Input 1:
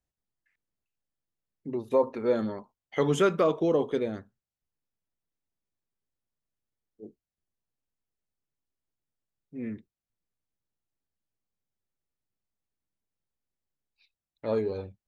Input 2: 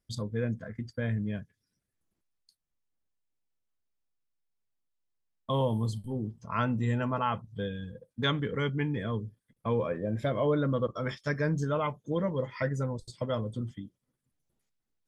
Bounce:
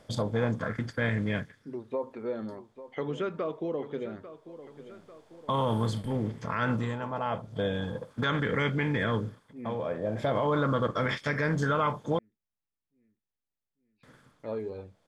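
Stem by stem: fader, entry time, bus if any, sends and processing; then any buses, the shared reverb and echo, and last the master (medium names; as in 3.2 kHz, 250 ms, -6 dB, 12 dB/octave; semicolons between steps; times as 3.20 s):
-5.5 dB, 0.00 s, no send, echo send -14 dB, low-pass 3.5 kHz 12 dB/octave; compression 2:1, threshold -25 dBFS, peak gain reduction 4.5 dB
-0.5 dB, 0.00 s, muted 12.19–14.03 s, no send, no echo send, spectral levelling over time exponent 0.6; sweeping bell 0.4 Hz 630–2100 Hz +9 dB; auto duck -10 dB, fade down 0.25 s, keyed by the first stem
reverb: none
echo: feedback delay 845 ms, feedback 54%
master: peak limiter -18 dBFS, peak gain reduction 8.5 dB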